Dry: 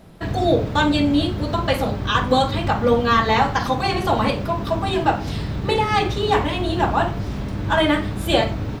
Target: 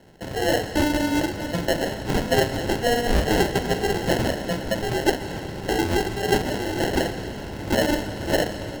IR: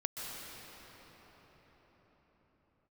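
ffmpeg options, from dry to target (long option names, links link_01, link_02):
-filter_complex "[0:a]bass=frequency=250:gain=-9,treble=frequency=4000:gain=7,acrusher=samples=37:mix=1:aa=0.000001,asplit=2[link_01][link_02];[1:a]atrim=start_sample=2205,lowpass=6300,highshelf=frequency=4400:gain=10.5[link_03];[link_02][link_03]afir=irnorm=-1:irlink=0,volume=-10.5dB[link_04];[link_01][link_04]amix=inputs=2:normalize=0,volume=-4.5dB"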